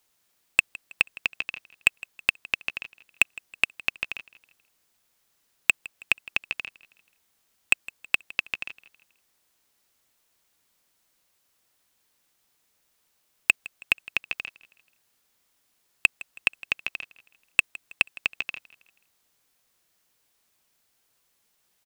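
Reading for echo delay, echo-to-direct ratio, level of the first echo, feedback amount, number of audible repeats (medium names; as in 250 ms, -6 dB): 161 ms, -19.5 dB, -20.5 dB, 43%, 2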